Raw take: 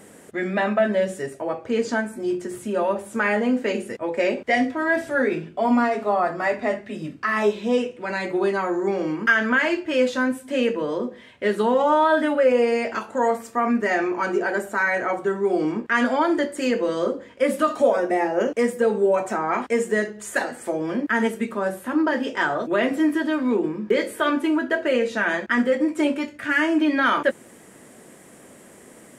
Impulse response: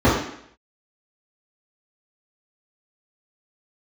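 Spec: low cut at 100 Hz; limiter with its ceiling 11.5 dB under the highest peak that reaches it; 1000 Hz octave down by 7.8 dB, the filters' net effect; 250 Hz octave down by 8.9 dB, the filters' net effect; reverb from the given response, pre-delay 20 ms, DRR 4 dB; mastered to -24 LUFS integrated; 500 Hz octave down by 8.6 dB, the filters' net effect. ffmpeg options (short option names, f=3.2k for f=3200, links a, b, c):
-filter_complex "[0:a]highpass=100,equalizer=f=250:t=o:g=-8.5,equalizer=f=500:t=o:g=-6,equalizer=f=1k:t=o:g=-8,alimiter=limit=-22dB:level=0:latency=1,asplit=2[a][b];[1:a]atrim=start_sample=2205,adelay=20[c];[b][c]afir=irnorm=-1:irlink=0,volume=-27.5dB[d];[a][d]amix=inputs=2:normalize=0,volume=4.5dB"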